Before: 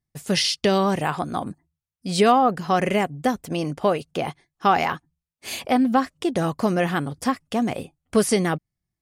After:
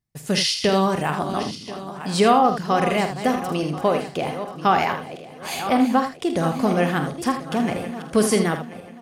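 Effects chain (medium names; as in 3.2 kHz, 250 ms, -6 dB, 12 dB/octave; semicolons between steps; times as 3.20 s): backward echo that repeats 518 ms, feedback 55%, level -11 dB; early reflections 47 ms -10.5 dB, 79 ms -9.5 dB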